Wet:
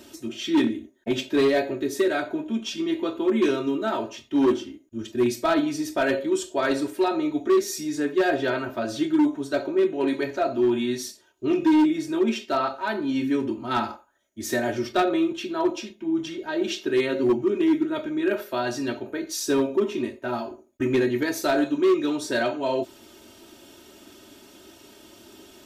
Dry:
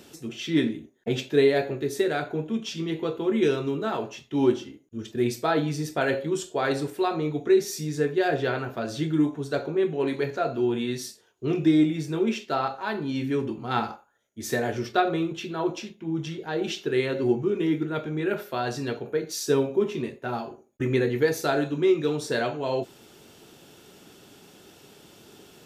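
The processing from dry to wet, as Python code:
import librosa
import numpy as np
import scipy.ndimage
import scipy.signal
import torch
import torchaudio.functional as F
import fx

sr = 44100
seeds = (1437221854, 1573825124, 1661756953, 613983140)

y = x + 0.84 * np.pad(x, (int(3.2 * sr / 1000.0), 0))[:len(x)]
y = np.clip(y, -10.0 ** (-15.0 / 20.0), 10.0 ** (-15.0 / 20.0))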